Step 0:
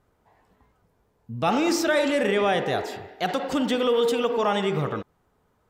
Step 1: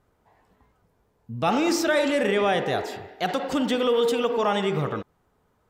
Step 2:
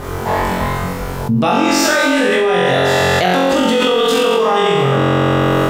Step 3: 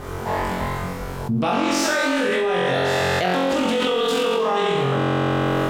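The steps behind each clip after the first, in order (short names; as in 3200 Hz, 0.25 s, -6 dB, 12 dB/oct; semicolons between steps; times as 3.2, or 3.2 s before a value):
nothing audible
flutter echo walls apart 3.8 m, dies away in 1.3 s; fast leveller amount 100%; gain -1 dB
Doppler distortion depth 0.24 ms; gain -7 dB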